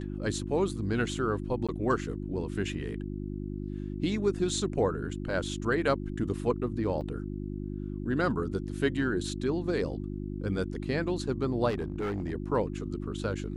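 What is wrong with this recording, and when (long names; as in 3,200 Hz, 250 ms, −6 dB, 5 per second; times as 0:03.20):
mains hum 50 Hz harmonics 7 −36 dBFS
0:01.67–0:01.69: drop-out 16 ms
0:07.01: drop-out 2.5 ms
0:11.69–0:12.33: clipping −27.5 dBFS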